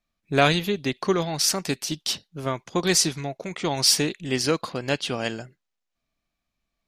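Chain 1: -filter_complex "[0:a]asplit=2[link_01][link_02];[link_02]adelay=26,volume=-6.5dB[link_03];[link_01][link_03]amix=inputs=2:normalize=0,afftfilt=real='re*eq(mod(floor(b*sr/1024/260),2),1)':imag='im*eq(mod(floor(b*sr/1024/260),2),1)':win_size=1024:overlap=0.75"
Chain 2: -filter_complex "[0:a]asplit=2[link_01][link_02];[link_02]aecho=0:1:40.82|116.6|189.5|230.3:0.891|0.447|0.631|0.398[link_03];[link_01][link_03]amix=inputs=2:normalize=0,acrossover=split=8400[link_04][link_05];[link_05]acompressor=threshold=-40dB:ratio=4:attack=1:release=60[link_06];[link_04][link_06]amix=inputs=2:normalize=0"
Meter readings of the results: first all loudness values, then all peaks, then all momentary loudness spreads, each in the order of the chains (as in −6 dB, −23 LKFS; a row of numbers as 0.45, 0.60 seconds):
−26.5, −20.5 LKFS; −8.5, −2.5 dBFS; 13, 10 LU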